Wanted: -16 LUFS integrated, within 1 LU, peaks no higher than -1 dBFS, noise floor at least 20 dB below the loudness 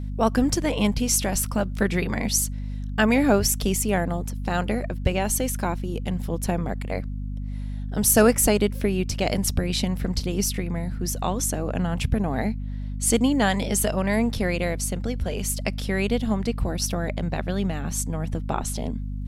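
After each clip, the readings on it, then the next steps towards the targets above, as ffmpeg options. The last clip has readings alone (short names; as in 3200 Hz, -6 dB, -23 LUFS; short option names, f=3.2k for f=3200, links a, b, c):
hum 50 Hz; harmonics up to 250 Hz; hum level -28 dBFS; loudness -24.5 LUFS; peak -4.5 dBFS; loudness target -16.0 LUFS
-> -af "bandreject=f=50:t=h:w=4,bandreject=f=100:t=h:w=4,bandreject=f=150:t=h:w=4,bandreject=f=200:t=h:w=4,bandreject=f=250:t=h:w=4"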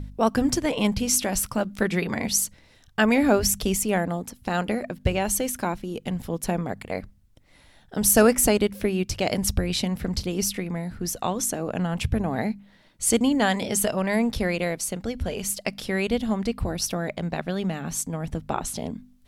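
hum none; loudness -25.0 LUFS; peak -5.0 dBFS; loudness target -16.0 LUFS
-> -af "volume=9dB,alimiter=limit=-1dB:level=0:latency=1"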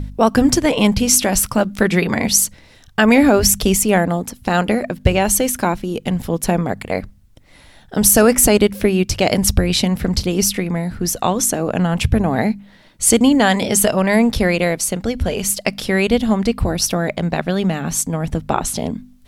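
loudness -16.5 LUFS; peak -1.0 dBFS; noise floor -47 dBFS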